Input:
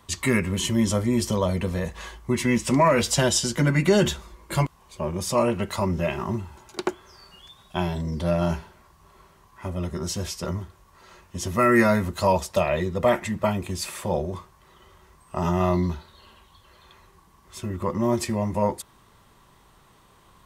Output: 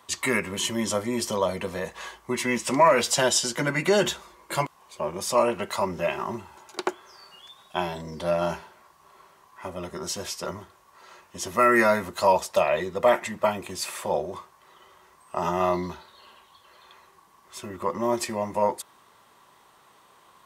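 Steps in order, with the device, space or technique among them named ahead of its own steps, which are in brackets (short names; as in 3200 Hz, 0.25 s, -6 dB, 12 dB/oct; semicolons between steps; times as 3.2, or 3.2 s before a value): filter by subtraction (in parallel: LPF 730 Hz 12 dB/oct + phase invert)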